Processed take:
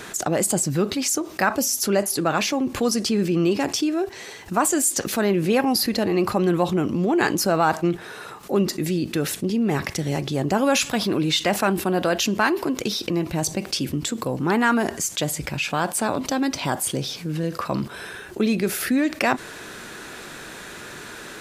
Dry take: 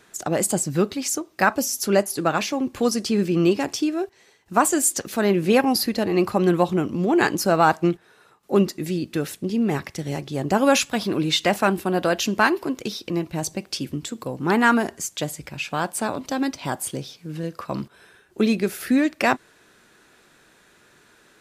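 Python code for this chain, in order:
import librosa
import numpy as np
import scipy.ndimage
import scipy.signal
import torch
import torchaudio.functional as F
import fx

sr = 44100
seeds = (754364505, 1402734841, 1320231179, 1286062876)

y = fx.env_flatten(x, sr, amount_pct=50)
y = y * 10.0 ** (-3.5 / 20.0)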